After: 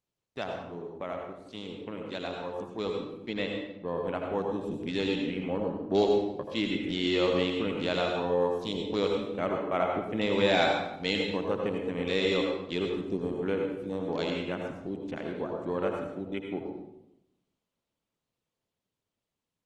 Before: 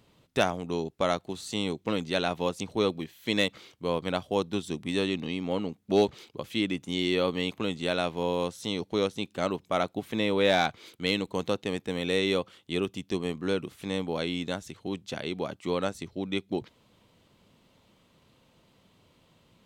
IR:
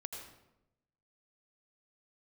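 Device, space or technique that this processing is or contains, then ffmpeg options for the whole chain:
speakerphone in a meeting room: -filter_complex "[0:a]lowshelf=frequency=100:gain=-5,afwtdn=0.0112,asettb=1/sr,asplit=3[link_01][link_02][link_03];[link_01]atrim=end=3.174[link_04];[link_02]atrim=start=3.17:end=3.88,asetpts=PTS-STARTPTS,afade=type=in:duration=0.004:curve=qsin,afade=type=out:start_time=0.706:duration=0.004:curve=qsin,aemphasis=mode=reproduction:type=75fm[link_05];[link_03]atrim=start=3.876[link_06];[link_04][link_05]acrossfade=duration=0.004:curve1=hsin:curve2=qsin[link_07];[link_07][link_06]acrossfade=duration=0.004:curve1=qsin:curve2=hsin[link_08];[1:a]atrim=start_sample=2205[link_09];[link_08][link_09]afir=irnorm=-1:irlink=0,dynaudnorm=framelen=610:gausssize=13:maxgain=9.5dB,volume=-6.5dB" -ar 48000 -c:a libopus -b:a 24k

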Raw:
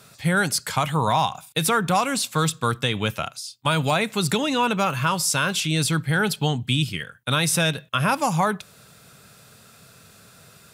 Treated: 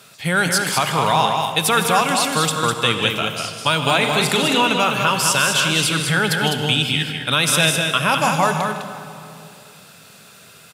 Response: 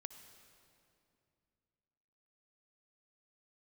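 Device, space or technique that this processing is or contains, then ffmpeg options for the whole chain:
stadium PA: -filter_complex "[0:a]highpass=frequency=230:poles=1,equalizer=frequency=2900:width_type=o:width=0.63:gain=5,aecho=1:1:157.4|204.1:0.251|0.562[link_01];[1:a]atrim=start_sample=2205[link_02];[link_01][link_02]afir=irnorm=-1:irlink=0,asettb=1/sr,asplit=3[link_03][link_04][link_05];[link_03]atrim=end=3.984[link_06];[link_04]atrim=start=3.98:end=4.61,asetpts=PTS-STARTPTS,afade=type=in:duration=0.004:curve=qsin,afade=type=out:start_time=0.626:duration=0.004:curve=qsin,asplit=2[link_07][link_08];[link_08]adelay=41,volume=-8dB[link_09];[link_07][link_09]amix=inputs=2:normalize=0,atrim=end_sample=27783[link_10];[link_05]atrim=start=4.606[link_11];[link_06][link_10]acrossfade=duration=0.004:curve1=hsin:curve2=qsin[link_12];[link_12][link_11]acrossfade=duration=0.004:curve1=qsin:curve2=hsin,volume=8.5dB"

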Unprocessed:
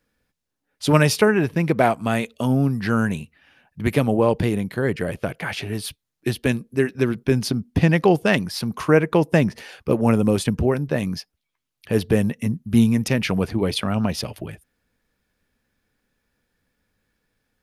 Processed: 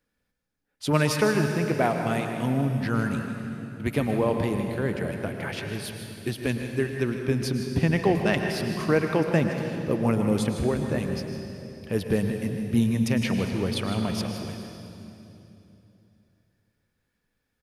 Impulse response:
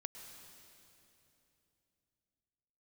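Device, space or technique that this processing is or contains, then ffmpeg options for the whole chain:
cave: -filter_complex "[0:a]aecho=1:1:156:0.237[link_01];[1:a]atrim=start_sample=2205[link_02];[link_01][link_02]afir=irnorm=-1:irlink=0,volume=-2dB"

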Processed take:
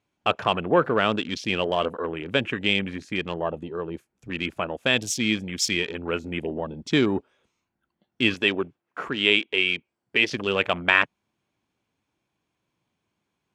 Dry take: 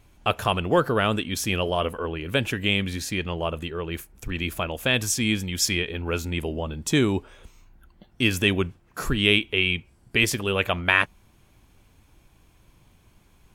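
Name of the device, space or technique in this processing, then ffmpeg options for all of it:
over-cleaned archive recording: -filter_complex "[0:a]highpass=170,lowpass=6700,afwtdn=0.0178,asettb=1/sr,asplit=3[link_01][link_02][link_03];[link_01]atrim=end=8.344[link_04];[link_02]atrim=start=8.34:end=10.32,asetpts=PTS-STARTPTS,afade=type=in:duration=0.004:curve=qsin,afade=type=out:start_time=1.976:duration=0.004:curve=qsin,bass=frequency=250:gain=-9,treble=frequency=4000:gain=-3[link_05];[link_03]atrim=start=10.316[link_06];[link_04][link_05]acrossfade=duration=0.004:curve1=hsin:curve2=qsin[link_07];[link_07][link_06]acrossfade=duration=0.004:curve1=qsin:curve2=hsin,volume=1dB"

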